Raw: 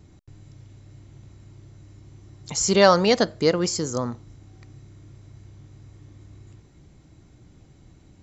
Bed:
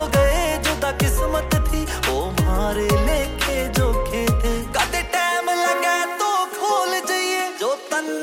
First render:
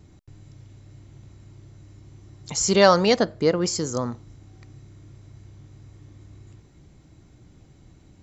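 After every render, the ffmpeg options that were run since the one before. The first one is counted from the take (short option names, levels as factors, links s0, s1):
-filter_complex "[0:a]asettb=1/sr,asplit=3[s0][s1][s2];[s0]atrim=end=3.164[s3];[s1]atrim=start=3.16:end=3.66,asetpts=PTS-STARTPTS,afade=t=in:d=0.004:c=qsin,afade=t=out:st=0.496:d=0.004:c=qsin,highshelf=f=3000:g=-8.5[s4];[s2]atrim=start=3.656[s5];[s3][s4]acrossfade=d=0.004:c1=hsin:c2=qsin[s6];[s6][s5]acrossfade=d=0.004:c1=qsin:c2=hsin"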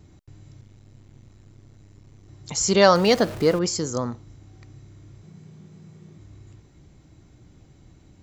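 -filter_complex "[0:a]asettb=1/sr,asplit=3[s0][s1][s2];[s0]atrim=end=0.614[s3];[s1]atrim=start=0.61:end=2.29,asetpts=PTS-STARTPTS,afade=t=in:d=0.004:c=qsin,afade=t=out:st=1.676:d=0.004:c=qsin,aeval=exprs='if(lt(val(0),0),0.251*val(0),val(0))':c=same[s4];[s2]atrim=start=2.286[s5];[s3][s4]acrossfade=d=0.004:c1=hsin:c2=qsin[s6];[s6][s5]acrossfade=d=0.004:c1=qsin:c2=hsin,asettb=1/sr,asplit=3[s7][s8][s9];[s7]atrim=end=2.954[s10];[s8]atrim=start=2.95:end=3.59,asetpts=PTS-STARTPTS,afade=t=in:d=0.004:c=qsin,afade=t=out:st=0.636:d=0.004:c=qsin,aeval=exprs='val(0)+0.5*0.0282*sgn(val(0))':c=same[s11];[s9]atrim=start=3.586[s12];[s10][s11]acrossfade=d=0.004:c1=hsin:c2=qsin[s13];[s13][s12]acrossfade=d=0.004:c1=qsin:c2=hsin,asettb=1/sr,asplit=3[s14][s15][s16];[s14]atrim=end=5.234[s17];[s15]atrim=start=5.23:end=6.18,asetpts=PTS-STARTPTS,afade=t=in:d=0.004:c=qsin,afade=t=out:st=0.946:d=0.004:c=qsin,afreqshift=56[s18];[s16]atrim=start=6.176[s19];[s17][s18]acrossfade=d=0.004:c1=hsin:c2=qsin[s20];[s20][s19]acrossfade=d=0.004:c1=qsin:c2=hsin"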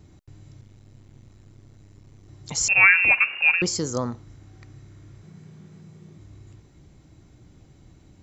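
-filter_complex "[0:a]asettb=1/sr,asplit=3[s0][s1][s2];[s0]atrim=end=2.684[s3];[s1]atrim=start=2.68:end=3.62,asetpts=PTS-STARTPTS,afade=t=in:d=0.004:c=qsin,afade=t=out:st=0.936:d=0.004:c=qsin,lowpass=f=2500:t=q:w=0.5098,lowpass=f=2500:t=q:w=0.6013,lowpass=f=2500:t=q:w=0.9,lowpass=f=2500:t=q:w=2.563,afreqshift=-2900[s4];[s2]atrim=start=3.616[s5];[s3][s4]acrossfade=d=0.004:c1=hsin:c2=qsin[s6];[s6][s5]acrossfade=d=0.004:c1=qsin:c2=hsin,asettb=1/sr,asplit=3[s7][s8][s9];[s7]atrim=end=4.174[s10];[s8]atrim=start=4.17:end=5.82,asetpts=PTS-STARTPTS,afade=t=in:d=0.004:c=qsin,afade=t=out:st=1.646:d=0.004:c=qsin,equalizer=f=1600:w=1.5:g=4[s11];[s9]atrim=start=5.816[s12];[s10][s11]acrossfade=d=0.004:c1=hsin:c2=qsin[s13];[s13][s12]acrossfade=d=0.004:c1=qsin:c2=hsin"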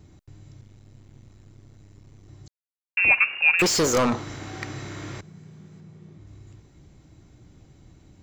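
-filter_complex "[0:a]asettb=1/sr,asplit=3[s0][s1][s2];[s0]atrim=end=3.594[s3];[s1]atrim=start=3.59:end=5.21,asetpts=PTS-STARTPTS,afade=t=in:d=0.004:c=qsin,afade=t=out:st=1.616:d=0.004:c=qsin,asplit=2[s4][s5];[s5]highpass=f=720:p=1,volume=31.6,asoftclip=type=tanh:threshold=0.224[s6];[s4][s6]amix=inputs=2:normalize=0,lowpass=f=4000:p=1,volume=0.501[s7];[s2]atrim=start=5.206[s8];[s3][s7]acrossfade=d=0.004:c1=hsin:c2=qsin[s9];[s9][s8]acrossfade=d=0.004:c1=qsin:c2=hsin,asettb=1/sr,asplit=3[s10][s11][s12];[s10]atrim=end=5.804[s13];[s11]atrim=start=5.8:end=6.27,asetpts=PTS-STARTPTS,afade=t=in:d=0.004:c=qsin,afade=t=out:st=0.466:d=0.004:c=qsin,lowpass=f=3800:p=1[s14];[s12]atrim=start=6.266[s15];[s13][s14]acrossfade=d=0.004:c1=hsin:c2=qsin[s16];[s16][s15]acrossfade=d=0.004:c1=qsin:c2=hsin,asplit=3[s17][s18][s19];[s17]atrim=end=2.48,asetpts=PTS-STARTPTS,afade=t=out:st=2.476:d=0.004:c=hsin[s20];[s18]atrim=start=2.48:end=2.97,asetpts=PTS-STARTPTS,volume=0[s21];[s19]atrim=start=2.97,asetpts=PTS-STARTPTS,afade=t=in:d=0.004:c=hsin[s22];[s20][s21][s22]concat=n=3:v=0:a=1"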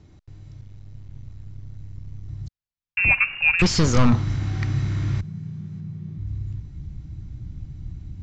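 -af "asubboost=boost=11.5:cutoff=140,lowpass=f=6200:w=0.5412,lowpass=f=6200:w=1.3066"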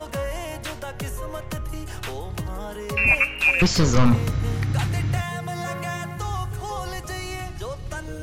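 -filter_complex "[1:a]volume=0.251[s0];[0:a][s0]amix=inputs=2:normalize=0"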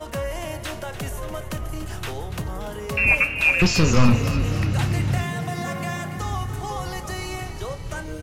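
-filter_complex "[0:a]asplit=2[s0][s1];[s1]adelay=32,volume=0.211[s2];[s0][s2]amix=inputs=2:normalize=0,asplit=8[s3][s4][s5][s6][s7][s8][s9][s10];[s4]adelay=288,afreqshift=37,volume=0.251[s11];[s5]adelay=576,afreqshift=74,volume=0.153[s12];[s6]adelay=864,afreqshift=111,volume=0.0933[s13];[s7]adelay=1152,afreqshift=148,volume=0.0569[s14];[s8]adelay=1440,afreqshift=185,volume=0.0347[s15];[s9]adelay=1728,afreqshift=222,volume=0.0211[s16];[s10]adelay=2016,afreqshift=259,volume=0.0129[s17];[s3][s11][s12][s13][s14][s15][s16][s17]amix=inputs=8:normalize=0"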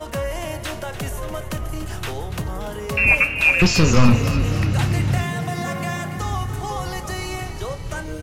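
-af "volume=1.33,alimiter=limit=0.891:level=0:latency=1"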